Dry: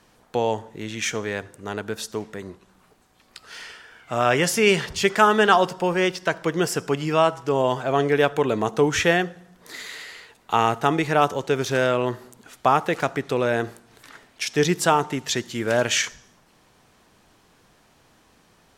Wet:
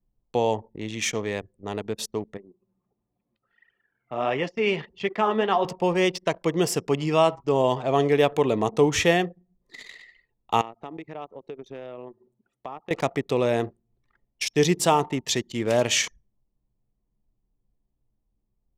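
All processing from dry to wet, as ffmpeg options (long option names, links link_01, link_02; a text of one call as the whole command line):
ffmpeg -i in.wav -filter_complex "[0:a]asettb=1/sr,asplit=3[link_01][link_02][link_03];[link_01]atrim=end=2.374[link_04];[link_02]atrim=start=2.37:end=5.65,asetpts=PTS-STARTPTS,afade=type=in:duration=0.004:curve=qsin,afade=type=out:start_time=3.276:duration=0.004:curve=qsin,acompressor=mode=upward:threshold=-33dB:ratio=2.5:attack=3.2:release=140:knee=2.83:detection=peak,flanger=delay=0.6:depth=8.8:regen=62:speed=1.5:shape=triangular,highpass=150,lowpass=3000[link_05];[link_03]atrim=start=5.646[link_06];[link_04][link_05]acrossfade=duration=0.004:curve1=hsin:curve2=qsin[link_07];[link_07][link_06]acrossfade=duration=0.004:curve1=qsin:curve2=hsin,asettb=1/sr,asplit=3[link_08][link_09][link_10];[link_08]atrim=end=10.614[link_11];[link_09]atrim=start=10.61:end=12.91,asetpts=PTS-STARTPTS,afade=type=in:duration=0.004:curve=qsin,afade=type=out:start_time=2.296:duration=0.004:curve=qsin,highpass=160,equalizer=frequency=5900:width_type=o:width=0.93:gain=-2.5,acompressor=threshold=-39dB:ratio=2.5:attack=3.2:release=140:knee=1:detection=peak[link_12];[link_10]atrim=start=12.906[link_13];[link_11][link_12]acrossfade=duration=0.004:curve1=hsin:curve2=qsin[link_14];[link_14][link_13]acrossfade=duration=0.004:curve1=qsin:curve2=hsin,anlmdn=6.31,equalizer=frequency=1500:width=4.1:gain=-13.5" out.wav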